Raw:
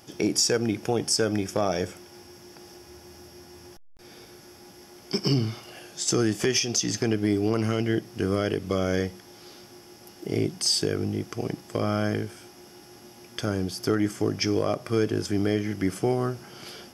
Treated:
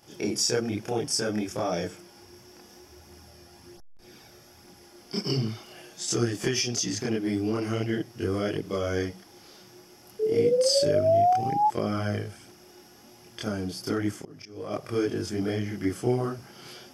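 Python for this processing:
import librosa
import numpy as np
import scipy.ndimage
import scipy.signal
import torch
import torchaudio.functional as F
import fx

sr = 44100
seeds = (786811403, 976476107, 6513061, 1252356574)

y = fx.spec_paint(x, sr, seeds[0], shape='rise', start_s=10.19, length_s=1.49, low_hz=430.0, high_hz=860.0, level_db=-21.0)
y = fx.auto_swell(y, sr, attack_ms=531.0, at=(14.16, 14.7), fade=0.02)
y = fx.chorus_voices(y, sr, voices=2, hz=0.64, base_ms=28, depth_ms=4.6, mix_pct=60)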